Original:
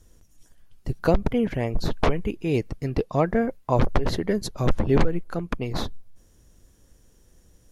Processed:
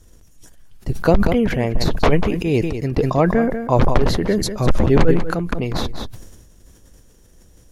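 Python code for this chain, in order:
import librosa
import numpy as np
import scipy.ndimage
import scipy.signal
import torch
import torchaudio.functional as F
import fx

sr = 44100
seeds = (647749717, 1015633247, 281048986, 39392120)

p1 = x + fx.echo_single(x, sr, ms=193, db=-13.0, dry=0)
p2 = fx.sustainer(p1, sr, db_per_s=50.0)
y = F.gain(torch.from_numpy(p2), 5.0).numpy()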